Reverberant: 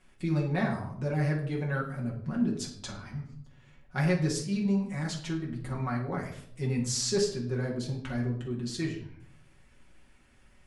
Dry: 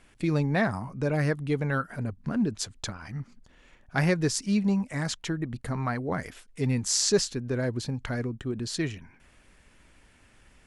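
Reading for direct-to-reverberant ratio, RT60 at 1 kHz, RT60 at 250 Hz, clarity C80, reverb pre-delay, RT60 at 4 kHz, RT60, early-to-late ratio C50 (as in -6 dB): -3.5 dB, 0.60 s, 0.90 s, 11.0 dB, 5 ms, 0.50 s, 0.65 s, 7.0 dB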